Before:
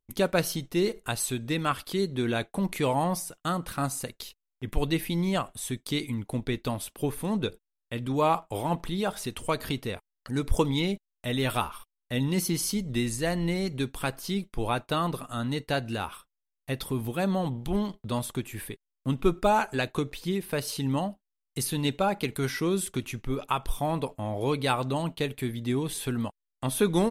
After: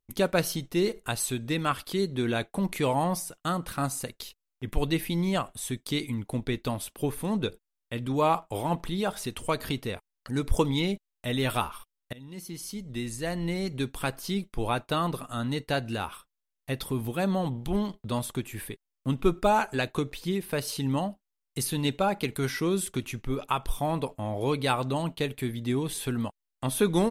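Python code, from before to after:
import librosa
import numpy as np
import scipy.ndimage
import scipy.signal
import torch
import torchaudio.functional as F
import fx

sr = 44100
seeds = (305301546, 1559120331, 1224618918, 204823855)

y = fx.edit(x, sr, fx.fade_in_from(start_s=12.13, length_s=1.8, floor_db=-23.5), tone=tone)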